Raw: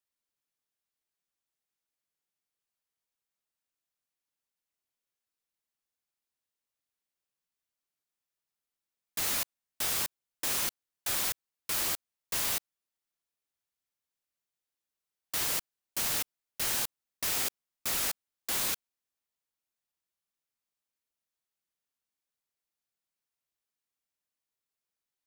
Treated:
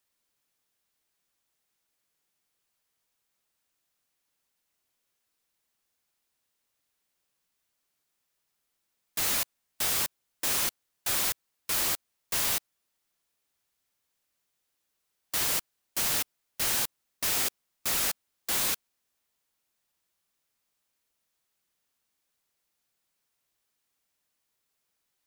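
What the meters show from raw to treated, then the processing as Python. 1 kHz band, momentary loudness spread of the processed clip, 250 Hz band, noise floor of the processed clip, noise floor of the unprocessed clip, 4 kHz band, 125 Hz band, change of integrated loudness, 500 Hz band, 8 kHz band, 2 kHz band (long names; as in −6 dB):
+3.0 dB, 8 LU, +3.0 dB, −80 dBFS, below −85 dBFS, +3.0 dB, +3.0 dB, +3.0 dB, +3.0 dB, +3.0 dB, +3.0 dB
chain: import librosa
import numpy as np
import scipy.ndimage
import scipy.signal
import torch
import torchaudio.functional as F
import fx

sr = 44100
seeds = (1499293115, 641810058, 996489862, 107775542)

y = fx.power_curve(x, sr, exponent=0.7)
y = fx.upward_expand(y, sr, threshold_db=-48.0, expansion=1.5)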